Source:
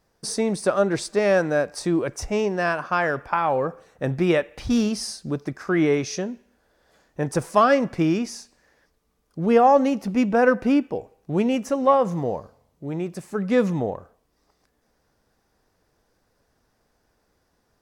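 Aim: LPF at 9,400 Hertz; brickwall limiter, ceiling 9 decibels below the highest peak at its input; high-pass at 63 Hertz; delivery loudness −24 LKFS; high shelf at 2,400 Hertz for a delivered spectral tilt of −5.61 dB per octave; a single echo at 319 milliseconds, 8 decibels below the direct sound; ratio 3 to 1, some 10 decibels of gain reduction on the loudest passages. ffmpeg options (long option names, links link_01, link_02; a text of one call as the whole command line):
ffmpeg -i in.wav -af "highpass=63,lowpass=9400,highshelf=frequency=2400:gain=-3.5,acompressor=threshold=-26dB:ratio=3,alimiter=limit=-21.5dB:level=0:latency=1,aecho=1:1:319:0.398,volume=7dB" out.wav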